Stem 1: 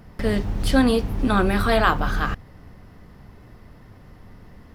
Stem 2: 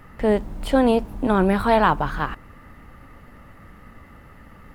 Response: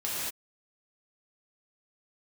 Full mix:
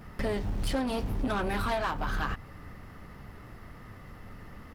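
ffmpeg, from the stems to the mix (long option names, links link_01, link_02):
-filter_complex "[0:a]asoftclip=type=tanh:threshold=-19dB,volume=-1.5dB[link_01];[1:a]highpass=frequency=950:poles=1,volume=-1,adelay=11,volume=-3dB[link_02];[link_01][link_02]amix=inputs=2:normalize=0,acompressor=threshold=-27dB:ratio=6"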